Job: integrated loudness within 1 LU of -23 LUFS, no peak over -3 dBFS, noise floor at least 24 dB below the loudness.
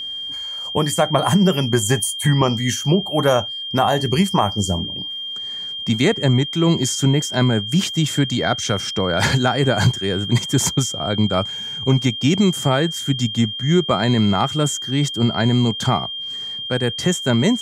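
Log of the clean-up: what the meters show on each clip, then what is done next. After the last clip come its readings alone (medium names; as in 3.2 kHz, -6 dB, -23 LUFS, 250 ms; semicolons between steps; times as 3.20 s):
steady tone 3.2 kHz; tone level -26 dBFS; loudness -19.0 LUFS; peak level -3.5 dBFS; loudness target -23.0 LUFS
-> band-stop 3.2 kHz, Q 30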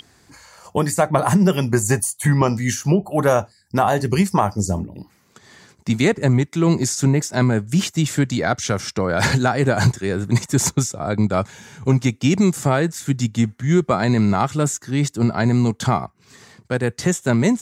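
steady tone not found; loudness -19.5 LUFS; peak level -4.0 dBFS; loudness target -23.0 LUFS
-> trim -3.5 dB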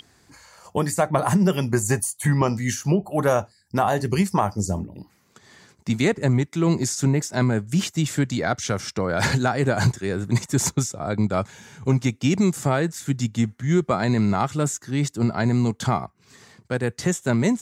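loudness -23.0 LUFS; peak level -7.5 dBFS; noise floor -61 dBFS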